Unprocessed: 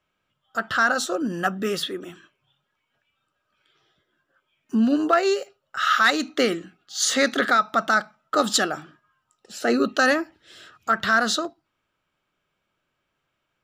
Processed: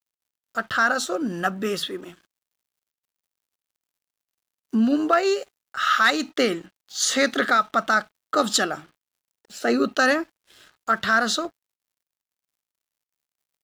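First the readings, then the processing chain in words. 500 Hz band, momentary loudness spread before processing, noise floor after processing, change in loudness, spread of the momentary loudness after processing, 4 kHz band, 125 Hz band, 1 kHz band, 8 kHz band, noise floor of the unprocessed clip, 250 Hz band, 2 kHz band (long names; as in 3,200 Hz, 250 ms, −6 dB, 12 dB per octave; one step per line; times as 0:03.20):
−0.5 dB, 13 LU, below −85 dBFS, 0.0 dB, 13 LU, −0.5 dB, −0.5 dB, 0.0 dB, −0.5 dB, −77 dBFS, −0.5 dB, 0.0 dB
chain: surface crackle 470 per second −52 dBFS
dead-zone distortion −49.5 dBFS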